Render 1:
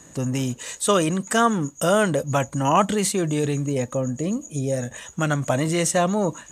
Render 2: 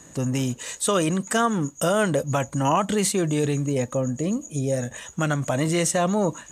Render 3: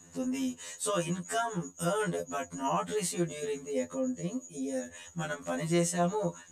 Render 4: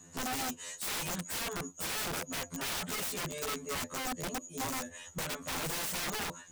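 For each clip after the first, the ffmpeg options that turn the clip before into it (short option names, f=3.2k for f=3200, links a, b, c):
-af "alimiter=limit=-11.5dB:level=0:latency=1:release=121"
-af "afftfilt=real='re*2*eq(mod(b,4),0)':imag='im*2*eq(mod(b,4),0)':win_size=2048:overlap=0.75,volume=-7dB"
-af "aeval=exprs='(mod(35.5*val(0)+1,2)-1)/35.5':c=same"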